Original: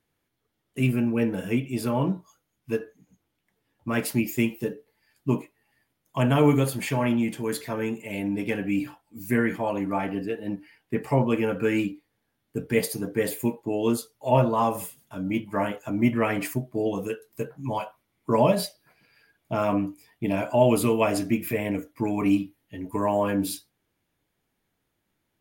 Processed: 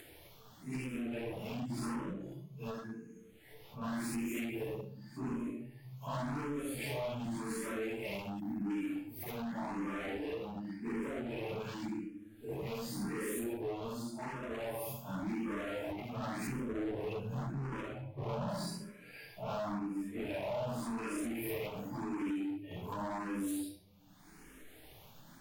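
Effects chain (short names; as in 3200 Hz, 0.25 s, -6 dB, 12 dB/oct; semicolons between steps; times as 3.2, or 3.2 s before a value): phase scrambler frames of 0.2 s; bell 96 Hz -7.5 dB 0.5 oct; flutter echo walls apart 11.8 m, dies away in 0.34 s; shoebox room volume 67 m³, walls mixed, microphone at 0.41 m; upward compressor, threshold -36 dBFS; de-hum 111.1 Hz, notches 3; compressor 8:1, threshold -30 dBFS, peak gain reduction 17.5 dB; 8.4–8.7 spectral gain 330–11000 Hz -22 dB; 16.47–18.49 tone controls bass +10 dB, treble -10 dB; hard clip -34 dBFS, distortion -8 dB; endless phaser +0.89 Hz; gain +1 dB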